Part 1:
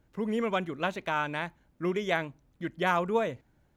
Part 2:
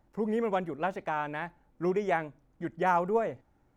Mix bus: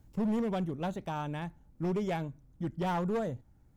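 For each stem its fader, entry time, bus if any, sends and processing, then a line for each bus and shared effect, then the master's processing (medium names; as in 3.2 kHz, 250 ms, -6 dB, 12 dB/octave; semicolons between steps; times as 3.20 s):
-5.0 dB, 0.00 s, no send, tone controls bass +13 dB, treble +13 dB; auto duck -13 dB, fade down 0.50 s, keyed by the second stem
-6.0 dB, 0.00 s, no send, tone controls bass +13 dB, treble +6 dB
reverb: none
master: hard clipper -27 dBFS, distortion -12 dB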